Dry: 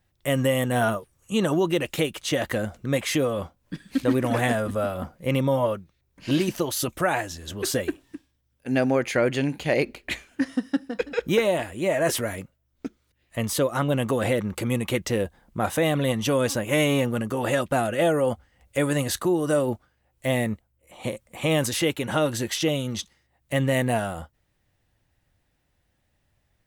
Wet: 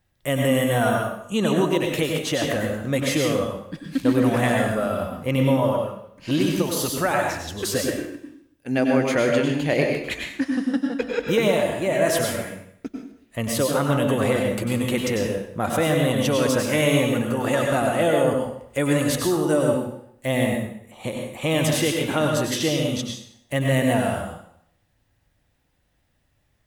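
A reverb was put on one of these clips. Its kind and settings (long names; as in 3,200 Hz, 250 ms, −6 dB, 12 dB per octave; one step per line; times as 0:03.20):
dense smooth reverb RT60 0.68 s, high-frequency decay 0.9×, pre-delay 85 ms, DRR 1 dB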